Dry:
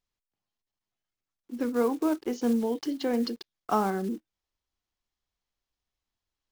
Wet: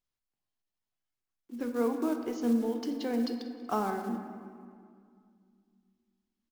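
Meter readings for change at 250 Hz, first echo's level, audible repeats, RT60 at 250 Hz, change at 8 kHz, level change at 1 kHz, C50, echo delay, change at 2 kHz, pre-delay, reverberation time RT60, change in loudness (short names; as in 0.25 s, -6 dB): -2.5 dB, -17.5 dB, 4, 3.0 s, -4.5 dB, -4.0 dB, 7.0 dB, 0.188 s, -3.5 dB, 3 ms, 2.1 s, -3.5 dB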